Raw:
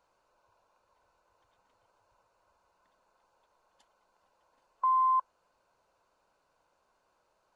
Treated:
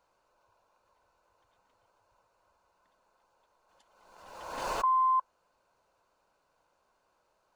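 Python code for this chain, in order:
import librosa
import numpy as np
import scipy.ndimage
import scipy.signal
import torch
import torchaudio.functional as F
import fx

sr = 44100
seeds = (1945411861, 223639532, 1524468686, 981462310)

y = fx.pre_swell(x, sr, db_per_s=45.0)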